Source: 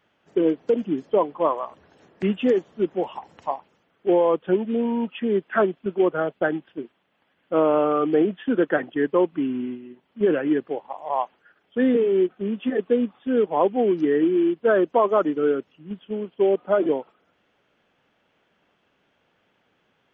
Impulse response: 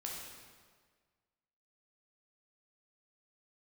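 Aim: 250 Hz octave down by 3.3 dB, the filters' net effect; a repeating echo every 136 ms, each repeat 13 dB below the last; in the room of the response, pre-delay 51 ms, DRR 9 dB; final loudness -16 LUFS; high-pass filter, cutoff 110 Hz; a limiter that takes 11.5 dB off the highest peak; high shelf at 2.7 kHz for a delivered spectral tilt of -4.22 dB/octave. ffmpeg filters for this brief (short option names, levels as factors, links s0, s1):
-filter_complex "[0:a]highpass=110,equalizer=f=250:t=o:g=-4.5,highshelf=f=2700:g=8.5,alimiter=limit=0.126:level=0:latency=1,aecho=1:1:136|272|408:0.224|0.0493|0.0108,asplit=2[s0][s1];[1:a]atrim=start_sample=2205,adelay=51[s2];[s1][s2]afir=irnorm=-1:irlink=0,volume=0.376[s3];[s0][s3]amix=inputs=2:normalize=0,volume=3.76"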